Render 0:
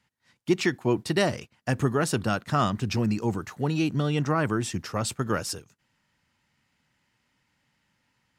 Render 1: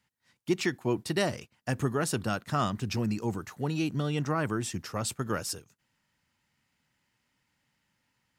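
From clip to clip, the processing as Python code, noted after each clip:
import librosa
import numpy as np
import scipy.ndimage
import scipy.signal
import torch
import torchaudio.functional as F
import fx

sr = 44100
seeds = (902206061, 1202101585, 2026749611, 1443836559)

y = fx.high_shelf(x, sr, hz=8800.0, db=7.0)
y = y * 10.0 ** (-4.5 / 20.0)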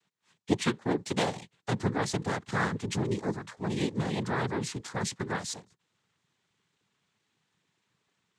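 y = fx.noise_vocoder(x, sr, seeds[0], bands=6)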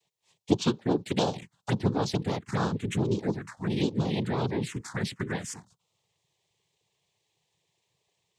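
y = fx.env_phaser(x, sr, low_hz=240.0, high_hz=2000.0, full_db=-25.5)
y = y * 10.0 ** (3.5 / 20.0)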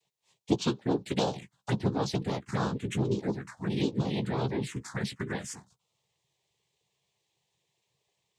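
y = fx.doubler(x, sr, ms=15.0, db=-9)
y = y * 10.0 ** (-2.5 / 20.0)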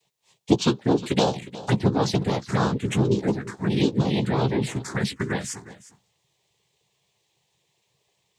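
y = x + 10.0 ** (-17.0 / 20.0) * np.pad(x, (int(359 * sr / 1000.0), 0))[:len(x)]
y = y * 10.0 ** (7.5 / 20.0)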